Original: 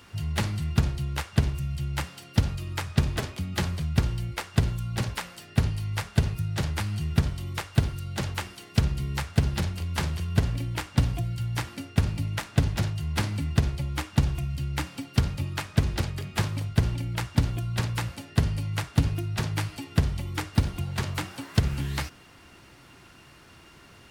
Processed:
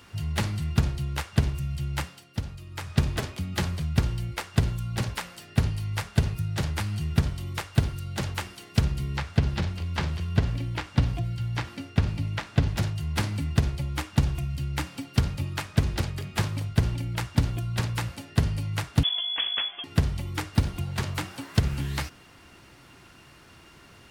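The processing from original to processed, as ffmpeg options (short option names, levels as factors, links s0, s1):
-filter_complex "[0:a]asettb=1/sr,asplit=3[s0][s1][s2];[s0]atrim=end=9.084[s3];[s1]atrim=start=9.08:end=12.74,asetpts=PTS-STARTPTS,afade=t=in:d=0.004:c=qsin,afade=t=out:st=3.656:d=0.004:c=qsin,acrossover=split=5700[s4][s5];[s5]acompressor=threshold=0.00126:ratio=4:attack=1:release=60[s6];[s4][s6]amix=inputs=2:normalize=0[s7];[s2]atrim=start=12.736[s8];[s3][s7]acrossfade=d=0.004:c1=hsin:c2=qsin[s9];[s9][s8]acrossfade=d=0.004:c1=qsin:c2=hsin,asettb=1/sr,asplit=3[s10][s11][s12];[s10]atrim=end=19.034[s13];[s11]atrim=start=19.03:end=19.84,asetpts=PTS-STARTPTS,afade=t=in:d=0.004:c=qsin,afade=t=out:st=0.806:d=0.004:c=qsin,lowpass=f=3000:t=q:w=0.5098,lowpass=f=3000:t=q:w=0.6013,lowpass=f=3000:t=q:w=0.9,lowpass=f=3000:t=q:w=2.563,afreqshift=-3500[s14];[s12]atrim=start=19.836[s15];[s13][s14]acrossfade=d=0.004:c1=hsin:c2=qsin[s16];[s16][s15]acrossfade=d=0.004:c1=qsin:c2=hsin,asplit=3[s17][s18][s19];[s17]atrim=end=2.26,asetpts=PTS-STARTPTS,afade=t=out:st=2.01:d=0.25:silence=0.375837[s20];[s18]atrim=start=2.26:end=2.71,asetpts=PTS-STARTPTS,volume=0.376[s21];[s19]atrim=start=2.71,asetpts=PTS-STARTPTS,afade=t=in:d=0.25:silence=0.375837[s22];[s20][s21][s22]concat=n=3:v=0:a=1"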